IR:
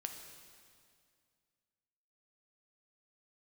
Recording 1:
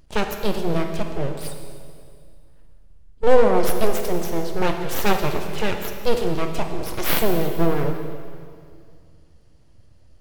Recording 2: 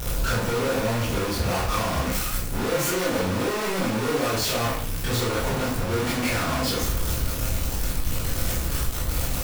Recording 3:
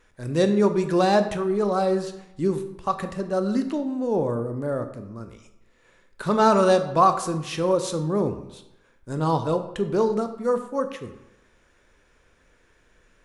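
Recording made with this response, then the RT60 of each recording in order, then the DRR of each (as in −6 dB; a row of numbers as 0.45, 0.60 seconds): 1; 2.2, 0.55, 0.90 seconds; 4.0, −7.0, 8.0 decibels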